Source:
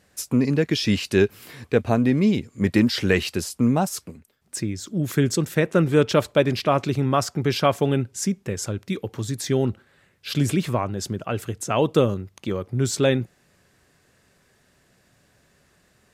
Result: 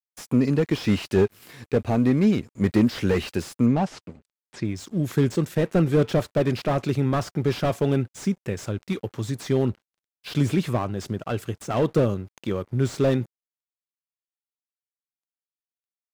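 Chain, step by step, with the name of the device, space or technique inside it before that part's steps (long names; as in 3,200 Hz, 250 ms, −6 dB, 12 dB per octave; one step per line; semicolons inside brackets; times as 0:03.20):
early transistor amplifier (dead-zone distortion −49.5 dBFS; slew-rate limiting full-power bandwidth 73 Hz)
0:03.66–0:04.65: low-pass filter 5,200 Hz 12 dB per octave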